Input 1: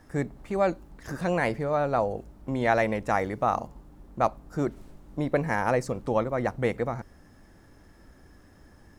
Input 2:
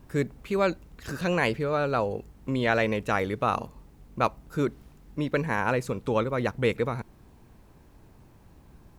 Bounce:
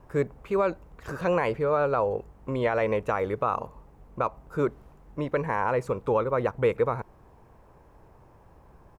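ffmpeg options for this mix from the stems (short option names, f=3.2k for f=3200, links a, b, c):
-filter_complex "[0:a]volume=-15.5dB[a];[1:a]equalizer=f=250:t=o:w=1:g=-6,equalizer=f=500:t=o:w=1:g=7,equalizer=f=1k:t=o:w=1:g=7,equalizer=f=4k:t=o:w=1:g=-6,alimiter=limit=-12dB:level=0:latency=1:release=110,adelay=0.7,volume=-1.5dB[b];[a][b]amix=inputs=2:normalize=0,highshelf=f=5.6k:g=-8"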